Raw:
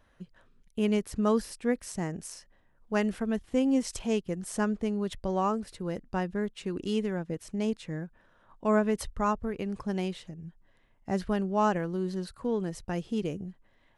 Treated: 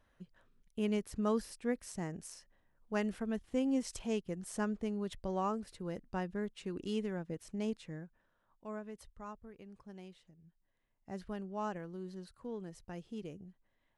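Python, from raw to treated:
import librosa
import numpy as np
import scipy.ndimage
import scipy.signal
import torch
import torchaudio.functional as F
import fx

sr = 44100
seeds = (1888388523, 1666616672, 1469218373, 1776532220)

y = fx.gain(x, sr, db=fx.line((7.75, -7.0), (8.79, -19.5), (10.39, -19.5), (11.26, -13.0)))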